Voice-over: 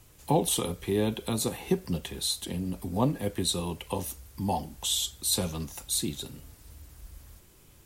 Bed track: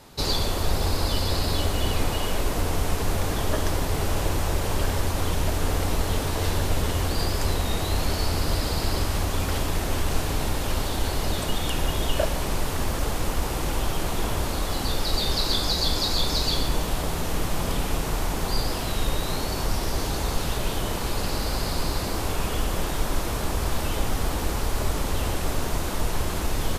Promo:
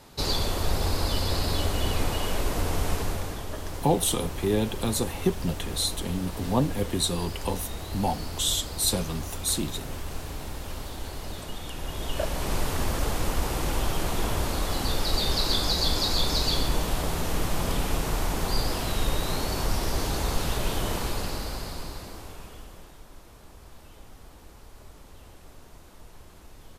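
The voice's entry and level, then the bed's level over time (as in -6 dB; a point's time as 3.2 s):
3.55 s, +2.0 dB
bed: 2.95 s -2 dB
3.46 s -10.5 dB
11.75 s -10.5 dB
12.55 s -1 dB
20.97 s -1 dB
23.03 s -23 dB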